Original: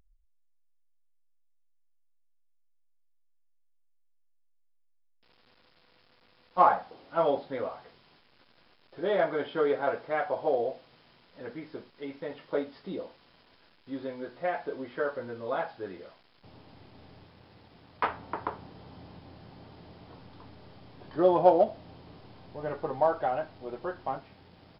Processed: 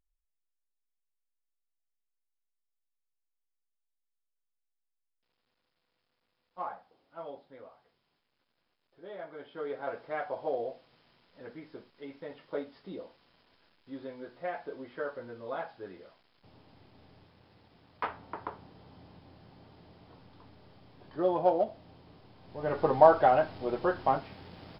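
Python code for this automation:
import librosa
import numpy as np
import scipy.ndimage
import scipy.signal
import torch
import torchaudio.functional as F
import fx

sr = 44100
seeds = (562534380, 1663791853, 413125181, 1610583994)

y = fx.gain(x, sr, db=fx.line((9.2, -17.0), (10.04, -5.5), (22.38, -5.5), (22.83, 6.5)))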